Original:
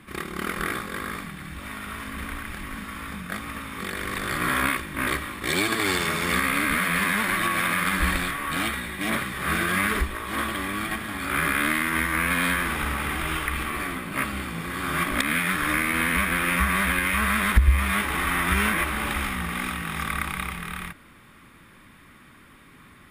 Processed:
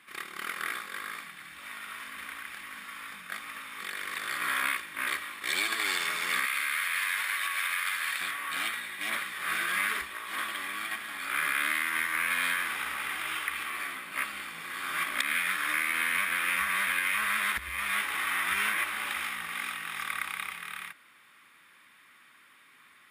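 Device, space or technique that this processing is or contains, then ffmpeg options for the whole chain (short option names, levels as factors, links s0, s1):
filter by subtraction: -filter_complex "[0:a]asplit=2[s0][s1];[s1]lowpass=2100,volume=-1[s2];[s0][s2]amix=inputs=2:normalize=0,asettb=1/sr,asplit=3[s3][s4][s5];[s3]atrim=end=6.454[s6];[s4]atrim=start=6.45:end=8.21,asetpts=PTS-STARTPTS,afade=t=in:d=0.004:c=qsin,afade=t=out:st=1.756:d=0.004:c=qsin,highpass=f=1300:p=1[s7];[s5]atrim=start=8.206[s8];[s6][s7]acrossfade=d=0.004:c1=hsin:c2=qsin[s9];[s9][s8]acrossfade=d=0.004:c1=qsin:c2=hsin,volume=0.562"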